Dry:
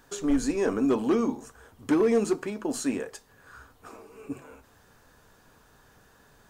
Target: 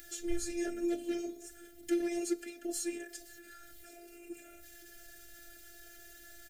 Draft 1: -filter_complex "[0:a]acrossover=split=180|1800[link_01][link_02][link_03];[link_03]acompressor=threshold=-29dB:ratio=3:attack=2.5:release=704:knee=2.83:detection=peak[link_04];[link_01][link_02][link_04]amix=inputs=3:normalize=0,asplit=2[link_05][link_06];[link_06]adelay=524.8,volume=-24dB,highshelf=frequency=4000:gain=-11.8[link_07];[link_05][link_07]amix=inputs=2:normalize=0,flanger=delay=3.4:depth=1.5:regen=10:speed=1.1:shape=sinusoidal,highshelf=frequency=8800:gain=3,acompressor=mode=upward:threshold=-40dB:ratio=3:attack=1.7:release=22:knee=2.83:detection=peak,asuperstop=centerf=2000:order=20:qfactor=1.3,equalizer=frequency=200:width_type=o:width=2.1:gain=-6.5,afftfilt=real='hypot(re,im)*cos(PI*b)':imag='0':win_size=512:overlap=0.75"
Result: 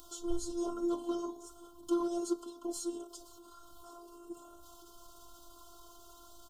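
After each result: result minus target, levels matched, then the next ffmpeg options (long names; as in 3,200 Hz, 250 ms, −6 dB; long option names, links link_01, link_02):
2,000 Hz band −19.0 dB; 8,000 Hz band −4.0 dB
-filter_complex "[0:a]acrossover=split=180|1800[link_01][link_02][link_03];[link_03]acompressor=threshold=-29dB:ratio=3:attack=2.5:release=704:knee=2.83:detection=peak[link_04];[link_01][link_02][link_04]amix=inputs=3:normalize=0,asplit=2[link_05][link_06];[link_06]adelay=524.8,volume=-24dB,highshelf=frequency=4000:gain=-11.8[link_07];[link_05][link_07]amix=inputs=2:normalize=0,flanger=delay=3.4:depth=1.5:regen=10:speed=1.1:shape=sinusoidal,highshelf=frequency=8800:gain=3,acompressor=mode=upward:threshold=-40dB:ratio=3:attack=1.7:release=22:knee=2.83:detection=peak,asuperstop=centerf=1000:order=20:qfactor=1.3,equalizer=frequency=200:width_type=o:width=2.1:gain=-6.5,afftfilt=real='hypot(re,im)*cos(PI*b)':imag='0':win_size=512:overlap=0.75"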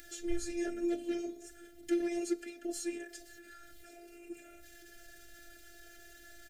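8,000 Hz band −4.0 dB
-filter_complex "[0:a]acrossover=split=180|1800[link_01][link_02][link_03];[link_03]acompressor=threshold=-29dB:ratio=3:attack=2.5:release=704:knee=2.83:detection=peak[link_04];[link_01][link_02][link_04]amix=inputs=3:normalize=0,asplit=2[link_05][link_06];[link_06]adelay=524.8,volume=-24dB,highshelf=frequency=4000:gain=-11.8[link_07];[link_05][link_07]amix=inputs=2:normalize=0,flanger=delay=3.4:depth=1.5:regen=10:speed=1.1:shape=sinusoidal,highshelf=frequency=8800:gain=13,acompressor=mode=upward:threshold=-40dB:ratio=3:attack=1.7:release=22:knee=2.83:detection=peak,asuperstop=centerf=1000:order=20:qfactor=1.3,equalizer=frequency=200:width_type=o:width=2.1:gain=-6.5,afftfilt=real='hypot(re,im)*cos(PI*b)':imag='0':win_size=512:overlap=0.75"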